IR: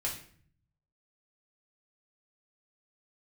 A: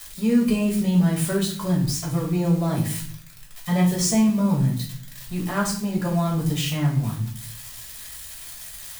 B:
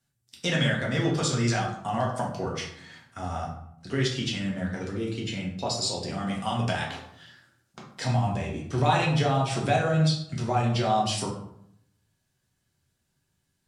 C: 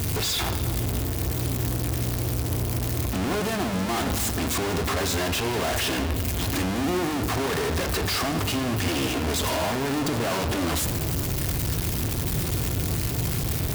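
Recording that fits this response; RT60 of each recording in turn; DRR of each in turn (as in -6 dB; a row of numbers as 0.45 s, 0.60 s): A; 0.50 s, 0.70 s, no single decay rate; -4.0 dB, -3.5 dB, 6.5 dB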